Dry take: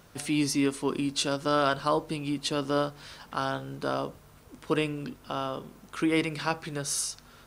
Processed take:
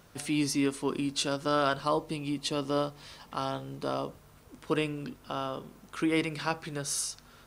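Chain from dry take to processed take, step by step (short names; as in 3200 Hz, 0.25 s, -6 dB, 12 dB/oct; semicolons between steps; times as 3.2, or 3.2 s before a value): 1.81–4.09 notch 1500 Hz, Q 5.9; gain -2 dB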